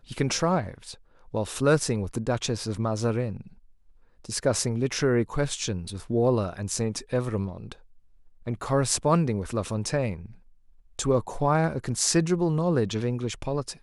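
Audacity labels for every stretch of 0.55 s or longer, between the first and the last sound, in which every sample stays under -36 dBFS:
3.410000	4.250000	silence
7.730000	8.470000	silence
10.260000	10.990000	silence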